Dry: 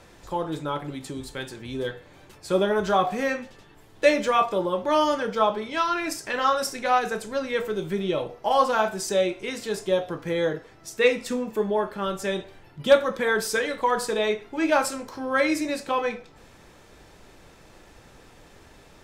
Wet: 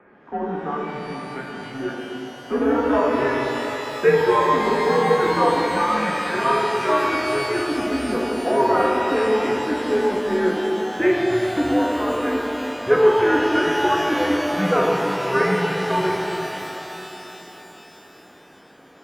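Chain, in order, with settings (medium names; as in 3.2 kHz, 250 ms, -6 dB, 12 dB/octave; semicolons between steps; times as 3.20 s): in parallel at -9.5 dB: sample-and-hold 37×; on the sum: mistuned SSB -130 Hz 330–2200 Hz; pitch-shifted reverb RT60 3.7 s, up +12 st, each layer -8 dB, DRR -2 dB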